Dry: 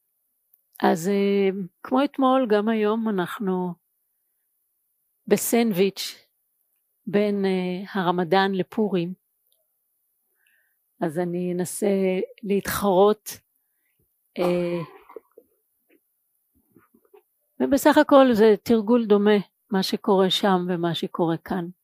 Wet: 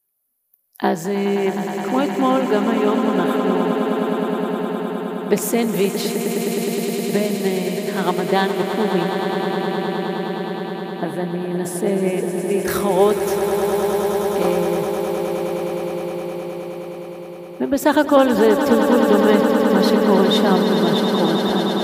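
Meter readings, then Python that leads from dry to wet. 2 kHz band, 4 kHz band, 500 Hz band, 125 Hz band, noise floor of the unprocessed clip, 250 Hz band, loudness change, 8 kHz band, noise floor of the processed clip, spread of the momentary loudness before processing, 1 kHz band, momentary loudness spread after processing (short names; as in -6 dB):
+5.0 dB, +4.5 dB, +4.5 dB, +4.0 dB, -73 dBFS, +5.0 dB, +3.0 dB, +5.0 dB, -34 dBFS, 11 LU, +4.5 dB, 11 LU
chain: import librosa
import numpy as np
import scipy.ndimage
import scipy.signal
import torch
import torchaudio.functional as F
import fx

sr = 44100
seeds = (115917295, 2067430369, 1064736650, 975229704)

y = fx.echo_swell(x, sr, ms=104, loudest=8, wet_db=-10.0)
y = y * 10.0 ** (1.0 / 20.0)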